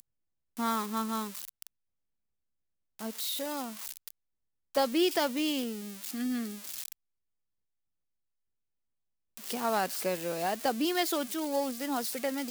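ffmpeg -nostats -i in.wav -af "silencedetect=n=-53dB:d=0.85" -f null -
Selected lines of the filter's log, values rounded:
silence_start: 1.67
silence_end: 2.99 | silence_duration: 1.32
silence_start: 6.93
silence_end: 9.37 | silence_duration: 2.45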